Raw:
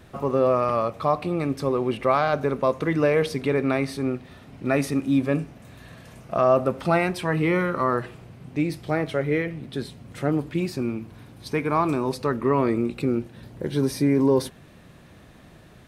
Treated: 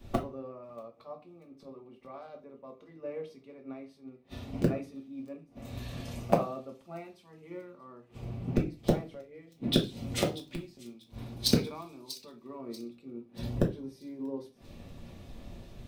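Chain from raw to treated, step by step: fifteen-band graphic EQ 160 Hz -6 dB, 1.6 kHz -10 dB, 10 kHz -7 dB; inverted gate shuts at -27 dBFS, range -26 dB; in parallel at -9 dB: bit crusher 5-bit; on the sum: feedback echo behind a high-pass 637 ms, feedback 58%, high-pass 3.8 kHz, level -10 dB; on a send at -2 dB: reverberation RT60 0.35 s, pre-delay 4 ms; on the sum: three bands expanded up and down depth 100%; trim +3.5 dB

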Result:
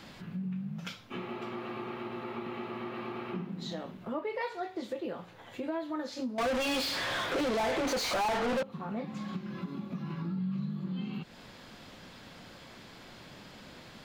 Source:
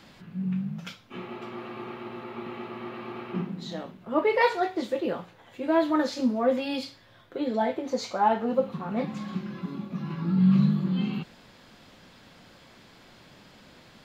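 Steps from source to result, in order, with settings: compression 4:1, threshold -38 dBFS, peak gain reduction 18 dB; 6.38–8.63 s: overdrive pedal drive 37 dB, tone 4.1 kHz, clips at -26.5 dBFS; trim +2.5 dB

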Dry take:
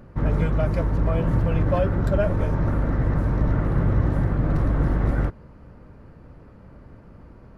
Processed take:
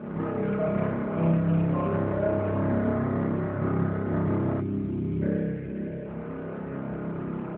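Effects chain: spectral selection erased 4.62–6.05 s, 640–1500 Hz; compressor with a negative ratio -29 dBFS, ratio -1; low-pass 3 kHz 24 dB/octave; peaking EQ 320 Hz +9 dB 0.22 oct; comb 4.8 ms, depth 59%; spring tank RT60 1.4 s, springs 30 ms, chirp 60 ms, DRR -6 dB; time-frequency box 4.60–5.22 s, 420–2100 Hz -26 dB; bass shelf 120 Hz -8.5 dB; echo that smears into a reverb 495 ms, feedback 48%, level -16 dB; AMR-NB 12.2 kbps 8 kHz

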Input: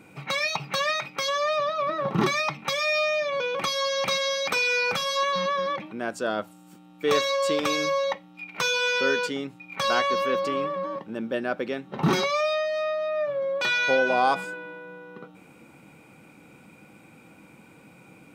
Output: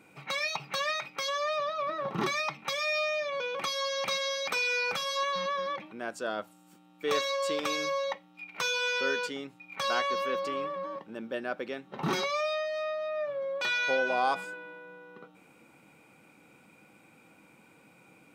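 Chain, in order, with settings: bass shelf 260 Hz -7.5 dB; trim -5 dB

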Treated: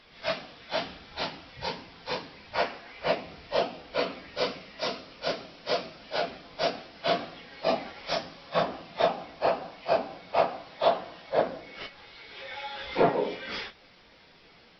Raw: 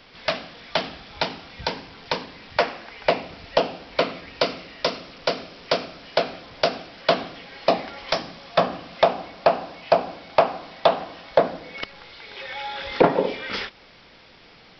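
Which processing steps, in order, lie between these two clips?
phase randomisation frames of 100 ms; trim -6 dB

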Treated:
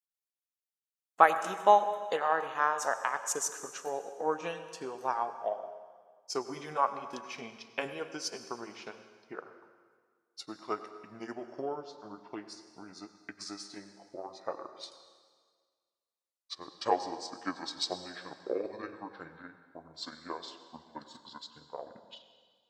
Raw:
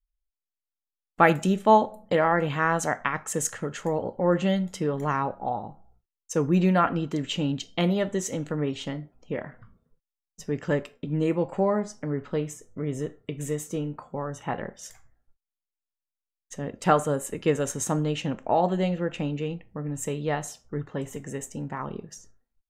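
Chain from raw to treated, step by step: pitch bend over the whole clip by -11.5 st starting unshifted; peaking EQ 2.1 kHz -8 dB 1.4 oct; transient shaper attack +5 dB, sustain -4 dB; high-pass 790 Hz 12 dB/octave; plate-style reverb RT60 1.7 s, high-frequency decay 0.95×, pre-delay 80 ms, DRR 10.5 dB

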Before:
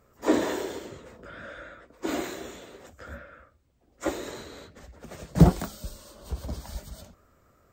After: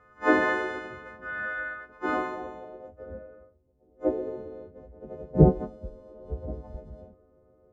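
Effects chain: partials quantised in pitch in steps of 3 st; low-pass sweep 1.6 kHz -> 490 Hz, 1.88–3.09 s

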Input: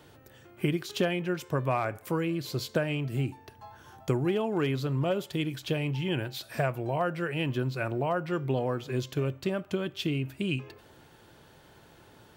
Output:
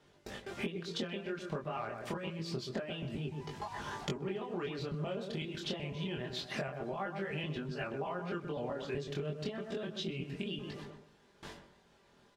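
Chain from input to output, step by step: pitch shift switched off and on +2 st, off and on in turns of 126 ms; word length cut 10-bit, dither triangular; comb 5 ms, depth 48%; harmonic-percussive split harmonic -5 dB; gate with hold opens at -44 dBFS; low-pass 5.4 kHz 12 dB/octave; filtered feedback delay 126 ms, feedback 28%, low-pass 1.4 kHz, level -9 dB; compression 12:1, threshold -48 dBFS, peak gain reduction 26 dB; chorus 0.27 Hz, delay 20 ms, depth 6.4 ms; trim +15.5 dB

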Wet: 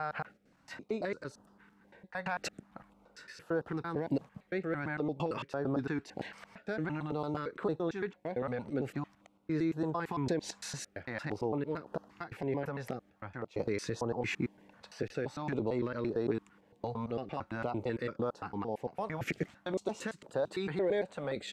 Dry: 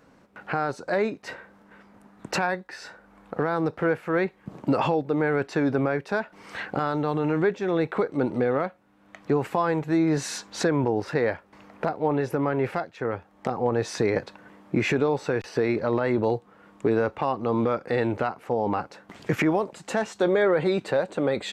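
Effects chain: slices played last to first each 113 ms, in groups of 6; step-sequenced notch 3.8 Hz 340–2200 Hz; trim -8.5 dB

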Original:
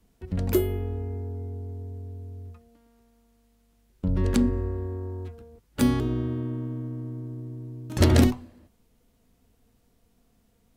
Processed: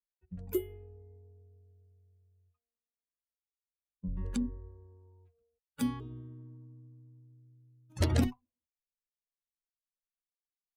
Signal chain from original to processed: expander on every frequency bin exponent 2; trim -7 dB

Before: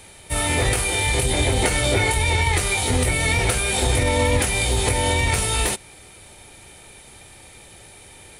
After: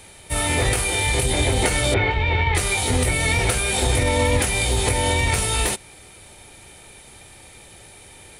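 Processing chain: 1.94–2.55 s: low-pass 3.3 kHz 24 dB/octave

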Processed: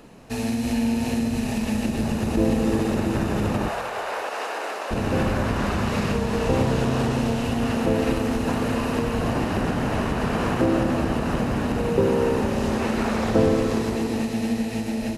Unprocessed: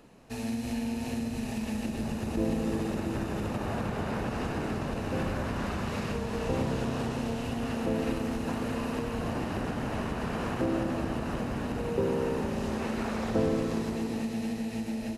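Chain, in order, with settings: 3.68–4.91 s: high-pass 500 Hz 24 dB/octave; on a send: reverberation RT60 0.75 s, pre-delay 20 ms, DRR 18 dB; on the sum: trim +8.5 dB

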